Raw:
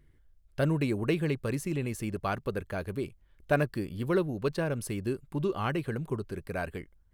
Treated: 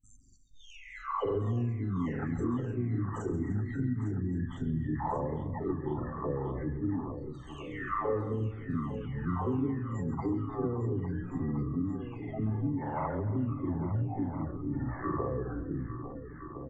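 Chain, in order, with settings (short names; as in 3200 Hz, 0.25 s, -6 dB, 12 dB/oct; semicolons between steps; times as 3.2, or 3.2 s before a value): spectral delay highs early, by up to 0.568 s; recorder AGC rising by 9.5 dB/s; gate with hold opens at -44 dBFS; high shelf 3600 Hz -11 dB; notch 2200 Hz, Q 26; spectral gate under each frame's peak -25 dB strong; compressor 4:1, threshold -33 dBFS, peak gain reduction 9 dB; pitch shift +9.5 st; tapped delay 58/129/366/583/830 ms -12.5/-16.5/-11.5/-11.5/-14.5 dB; on a send at -20 dB: reverb RT60 0.50 s, pre-delay 55 ms; on the sum: speed mistake 78 rpm record played at 33 rpm; gain +3.5 dB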